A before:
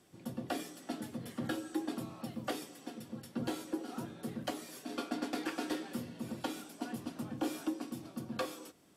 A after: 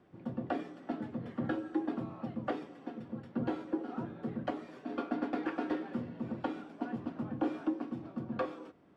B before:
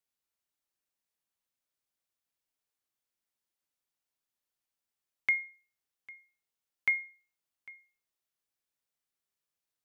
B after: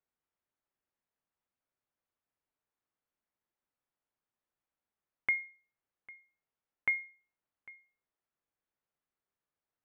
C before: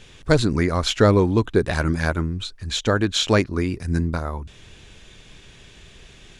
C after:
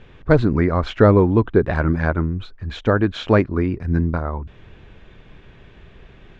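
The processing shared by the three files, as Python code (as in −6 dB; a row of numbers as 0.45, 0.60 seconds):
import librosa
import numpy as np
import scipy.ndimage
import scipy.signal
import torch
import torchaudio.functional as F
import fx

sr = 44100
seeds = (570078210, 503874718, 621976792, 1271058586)

y = scipy.signal.sosfilt(scipy.signal.butter(2, 1700.0, 'lowpass', fs=sr, output='sos'), x)
y = F.gain(torch.from_numpy(y), 3.0).numpy()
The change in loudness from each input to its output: +2.5, −2.5, +2.5 LU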